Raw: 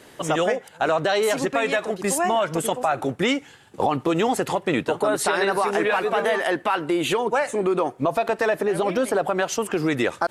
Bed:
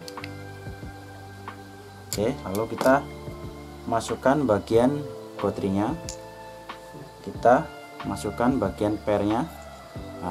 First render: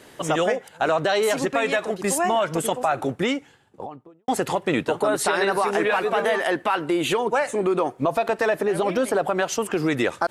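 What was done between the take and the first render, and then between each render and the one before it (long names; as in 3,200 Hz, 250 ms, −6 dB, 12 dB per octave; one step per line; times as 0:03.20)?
0:02.96–0:04.28: fade out and dull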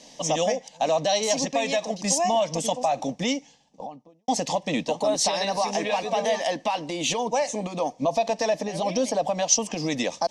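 low-pass with resonance 5,800 Hz, resonance Q 5.2
phaser with its sweep stopped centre 380 Hz, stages 6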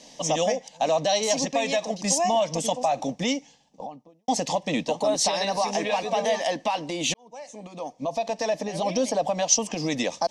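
0:07.14–0:08.82: fade in linear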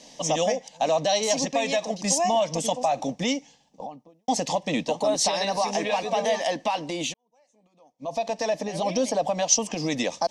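0:07.01–0:08.13: duck −22.5 dB, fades 0.15 s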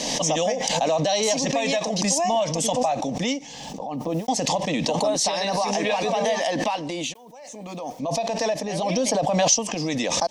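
background raised ahead of every attack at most 25 dB per second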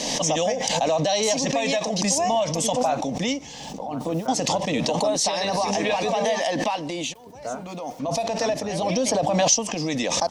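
mix in bed −14.5 dB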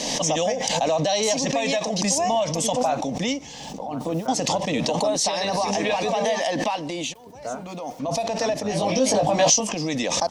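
0:08.63–0:09.73: double-tracking delay 19 ms −3 dB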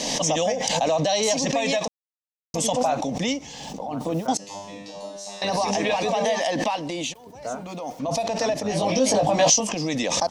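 0:01.88–0:02.54: silence
0:04.37–0:05.42: tuned comb filter 100 Hz, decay 0.75 s, mix 100%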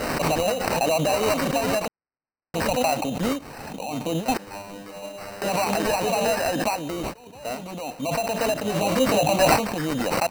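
decimation without filtering 13×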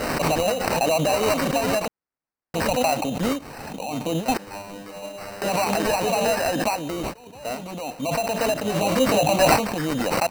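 level +1 dB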